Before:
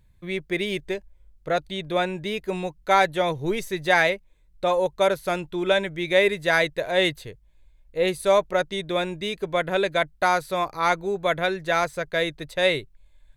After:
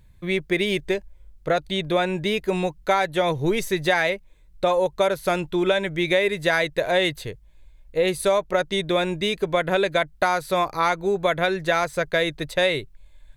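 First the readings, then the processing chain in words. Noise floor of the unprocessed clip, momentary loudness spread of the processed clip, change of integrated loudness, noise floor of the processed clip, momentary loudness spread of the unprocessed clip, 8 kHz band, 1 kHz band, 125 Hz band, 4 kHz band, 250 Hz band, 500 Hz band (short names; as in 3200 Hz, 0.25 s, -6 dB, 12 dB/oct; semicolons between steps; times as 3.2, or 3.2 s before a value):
-57 dBFS, 5 LU, +1.0 dB, -52 dBFS, 10 LU, +2.5 dB, 0.0 dB, +4.0 dB, +1.5 dB, +3.5 dB, +1.5 dB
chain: compressor 6:1, threshold -23 dBFS, peak gain reduction 10 dB; gain +6 dB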